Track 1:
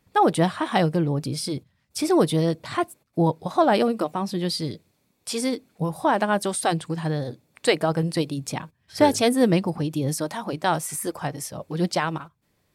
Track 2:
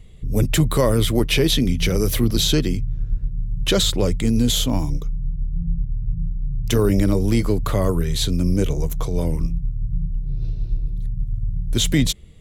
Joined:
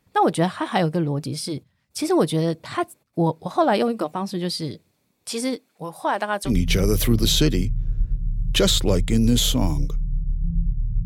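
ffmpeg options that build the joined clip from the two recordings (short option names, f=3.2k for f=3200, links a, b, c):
-filter_complex "[0:a]asettb=1/sr,asplit=3[a][b][c];[a]atrim=end=5.564[d];[b]atrim=start=5.56:end=6.52,asetpts=PTS-STARTPTS,afade=t=in:d=0.004:c=qsin,afade=t=out:st=0.956:d=0.004:c=qsin,highpass=f=570:p=1[e];[c]atrim=start=6.516[f];[d][e]acrossfade=d=0.004:c1=hsin:c2=qsin[g];[g][f]acrossfade=d=0.004:c1=qsin:c2=hsin,apad=whole_dur=11.05,atrim=end=11.05,atrim=end=6.52,asetpts=PTS-STARTPTS[h];[1:a]atrim=start=1.56:end=6.17,asetpts=PTS-STARTPTS[i];[h][i]acrossfade=d=0.08:c1=tri:c2=tri"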